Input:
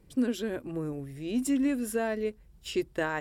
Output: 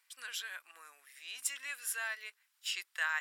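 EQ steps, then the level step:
high-pass filter 1,300 Hz 24 dB per octave
+2.5 dB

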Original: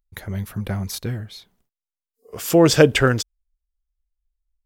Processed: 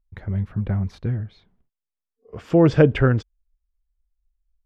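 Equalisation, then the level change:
low-pass filter 2,200 Hz 12 dB per octave
low-shelf EQ 260 Hz +10 dB
−5.0 dB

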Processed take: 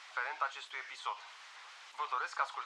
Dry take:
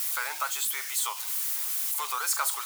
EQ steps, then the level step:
high-pass filter 400 Hz 12 dB per octave
high-frequency loss of the air 120 metres
head-to-tape spacing loss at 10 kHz 24 dB
0.0 dB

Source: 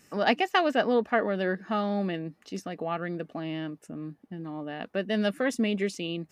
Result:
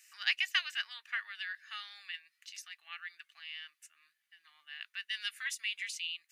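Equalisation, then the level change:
inverse Chebyshev high-pass filter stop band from 560 Hz, stop band 60 dB
notch filter 5,400 Hz, Q 15
+1.0 dB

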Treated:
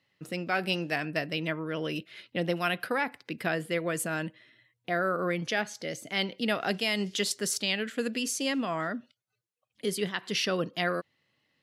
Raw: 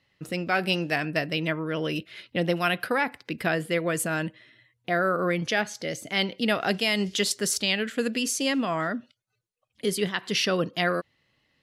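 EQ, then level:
high-pass filter 110 Hz
−4.0 dB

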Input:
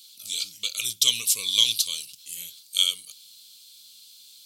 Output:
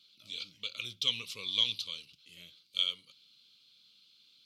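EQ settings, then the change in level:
high-frequency loss of the air 330 metres
−1.5 dB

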